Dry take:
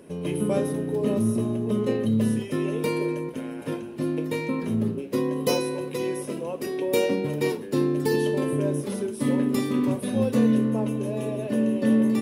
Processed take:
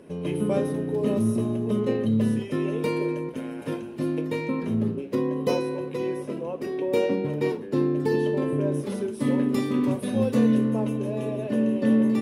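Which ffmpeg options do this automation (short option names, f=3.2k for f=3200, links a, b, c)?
-af "asetnsamples=n=441:p=0,asendcmd='0.98 lowpass f 8500;1.8 lowpass f 4300;3.36 lowpass f 9500;4.21 lowpass f 3800;5.15 lowpass f 2000;8.72 lowpass f 5000;9.83 lowpass f 8300;10.97 lowpass f 4300',lowpass=f=4.5k:p=1"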